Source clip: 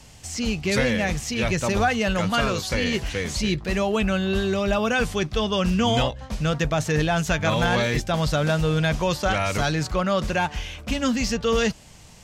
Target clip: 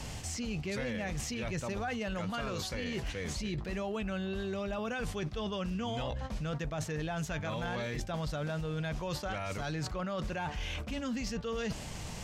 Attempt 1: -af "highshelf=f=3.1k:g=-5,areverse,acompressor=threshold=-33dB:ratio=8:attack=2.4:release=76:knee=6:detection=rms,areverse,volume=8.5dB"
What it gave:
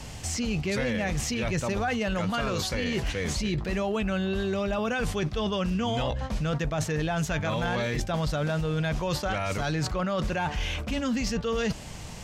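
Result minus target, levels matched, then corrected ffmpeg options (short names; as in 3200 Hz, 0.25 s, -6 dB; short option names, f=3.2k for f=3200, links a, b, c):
compressor: peak gain reduction -8 dB
-af "highshelf=f=3.1k:g=-5,areverse,acompressor=threshold=-42dB:ratio=8:attack=2.4:release=76:knee=6:detection=rms,areverse,volume=8.5dB"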